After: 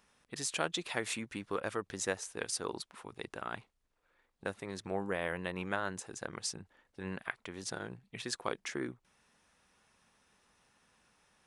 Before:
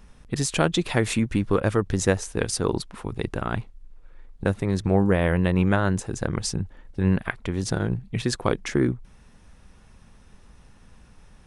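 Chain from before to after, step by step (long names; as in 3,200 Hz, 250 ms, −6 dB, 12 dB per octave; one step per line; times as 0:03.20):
high-pass filter 770 Hz 6 dB per octave
level −8 dB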